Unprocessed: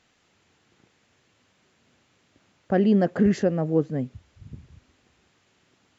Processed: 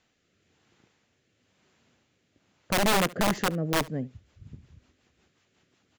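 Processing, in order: rotary speaker horn 1 Hz, later 5.5 Hz, at 3.06; wrapped overs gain 16 dB; echo 71 ms -22 dB; gain -2 dB

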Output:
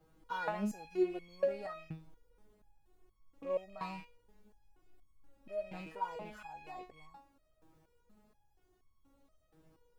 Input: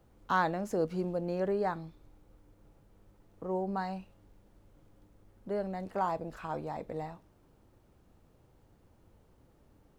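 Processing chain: rattling part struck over -45 dBFS, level -40 dBFS; stepped resonator 4.2 Hz 160–1100 Hz; gain +10 dB

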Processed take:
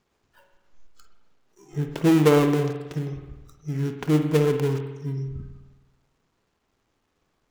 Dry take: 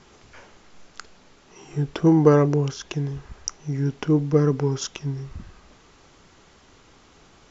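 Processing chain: switching dead time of 0.25 ms; spectral noise reduction 16 dB; spring tank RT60 1.1 s, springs 52 ms, chirp 75 ms, DRR 5.5 dB; gain -2 dB

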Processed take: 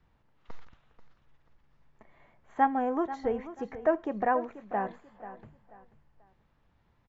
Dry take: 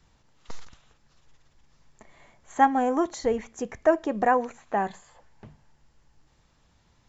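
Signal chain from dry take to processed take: LPF 2400 Hz 12 dB/oct; feedback echo 0.487 s, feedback 30%, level -14 dB; gain -5 dB

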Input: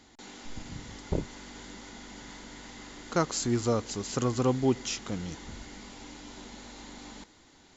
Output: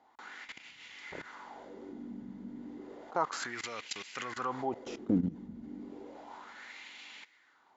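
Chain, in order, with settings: level quantiser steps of 18 dB; wah 0.32 Hz 210–2600 Hz, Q 3.3; gain +17 dB

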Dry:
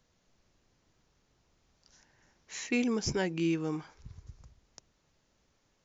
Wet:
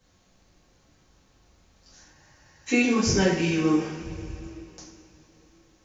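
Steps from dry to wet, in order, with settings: two-slope reverb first 0.56 s, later 3.5 s, from -18 dB, DRR -9.5 dB; spectral freeze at 2.17, 0.51 s

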